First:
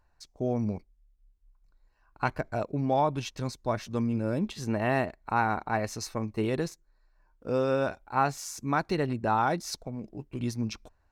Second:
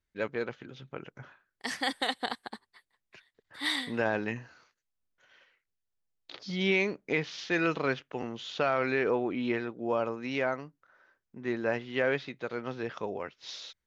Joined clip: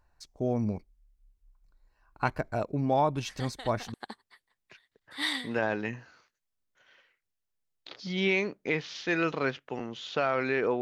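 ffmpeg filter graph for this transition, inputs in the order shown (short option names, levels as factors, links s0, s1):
-filter_complex "[1:a]asplit=2[s0][s1];[0:a]apad=whole_dur=10.81,atrim=end=10.81,atrim=end=3.942[s2];[s1]atrim=start=2.368:end=9.24[s3];[s0]atrim=start=1.71:end=2.37,asetpts=PTS-STARTPTS,volume=0.224,afade=t=in:d=0.004:c=hsin,afade=t=out:st=0.656:d=0.004:c=hsin,adelay=3280[s4];[s2][s3]acrossfade=d=0.004:c1=hsin:c2=hsin[s5];[s5][s4]amix=inputs=2:normalize=0"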